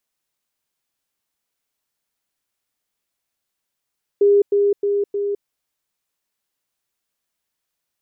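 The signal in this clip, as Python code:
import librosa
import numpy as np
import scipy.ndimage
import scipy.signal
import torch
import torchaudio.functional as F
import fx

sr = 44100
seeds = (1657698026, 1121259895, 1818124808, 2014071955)

y = fx.level_ladder(sr, hz=405.0, from_db=-10.0, step_db=-3.0, steps=4, dwell_s=0.21, gap_s=0.1)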